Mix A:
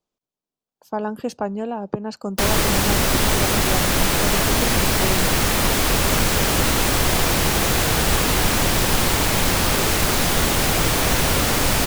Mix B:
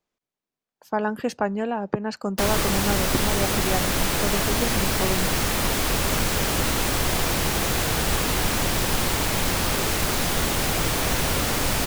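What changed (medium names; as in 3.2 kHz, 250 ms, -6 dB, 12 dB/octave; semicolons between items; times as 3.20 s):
speech: add peaking EQ 1.9 kHz +9.5 dB 0.88 oct; background -4.5 dB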